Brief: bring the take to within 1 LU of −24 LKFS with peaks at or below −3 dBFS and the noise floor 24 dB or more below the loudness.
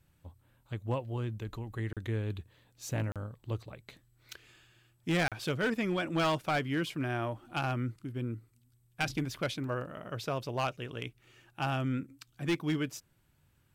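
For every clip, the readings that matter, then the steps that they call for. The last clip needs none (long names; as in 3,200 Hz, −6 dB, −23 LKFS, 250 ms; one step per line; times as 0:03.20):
share of clipped samples 1.0%; peaks flattened at −24.5 dBFS; number of dropouts 3; longest dropout 37 ms; integrated loudness −35.0 LKFS; sample peak −24.5 dBFS; target loudness −24.0 LKFS
→ clipped peaks rebuilt −24.5 dBFS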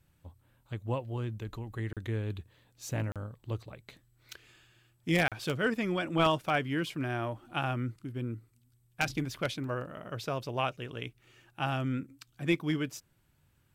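share of clipped samples 0.0%; number of dropouts 3; longest dropout 37 ms
→ repair the gap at 0:01.93/0:03.12/0:05.28, 37 ms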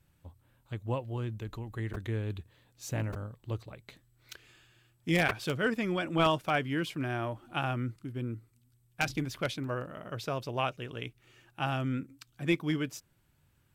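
number of dropouts 0; integrated loudness −33.5 LKFS; sample peak −15.5 dBFS; target loudness −24.0 LKFS
→ level +9.5 dB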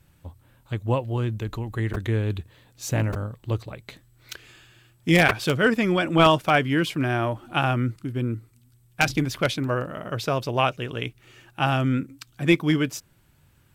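integrated loudness −24.0 LKFS; sample peak −6.0 dBFS; background noise floor −60 dBFS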